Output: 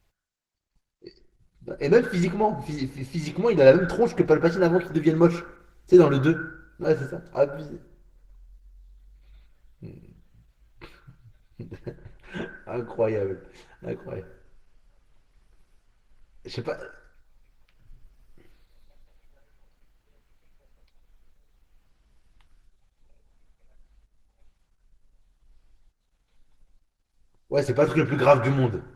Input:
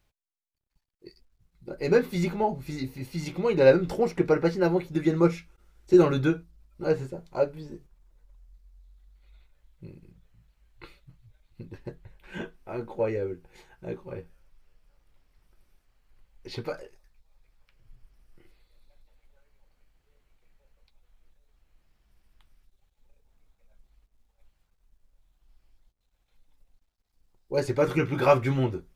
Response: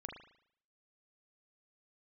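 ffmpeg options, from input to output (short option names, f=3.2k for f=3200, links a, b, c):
-filter_complex "[0:a]asplit=2[a][b];[b]lowpass=f=1.5k:t=q:w=8.1[c];[1:a]atrim=start_sample=2205,adelay=105[d];[c][d]afir=irnorm=-1:irlink=0,volume=-16dB[e];[a][e]amix=inputs=2:normalize=0,volume=3.5dB" -ar 48000 -c:a libopus -b:a 16k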